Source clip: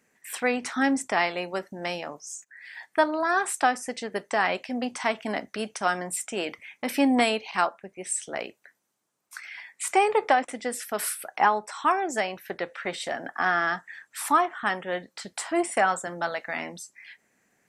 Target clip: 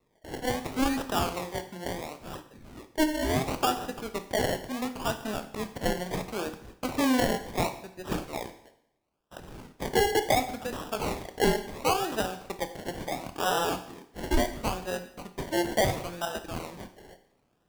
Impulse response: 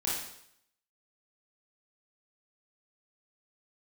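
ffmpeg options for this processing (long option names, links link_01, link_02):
-filter_complex "[0:a]highshelf=frequency=7600:gain=4.5,acrusher=samples=28:mix=1:aa=0.000001:lfo=1:lforange=16.8:lforate=0.72,asplit=2[link_01][link_02];[1:a]atrim=start_sample=2205[link_03];[link_02][link_03]afir=irnorm=-1:irlink=0,volume=-13dB[link_04];[link_01][link_04]amix=inputs=2:normalize=0,volume=-5dB"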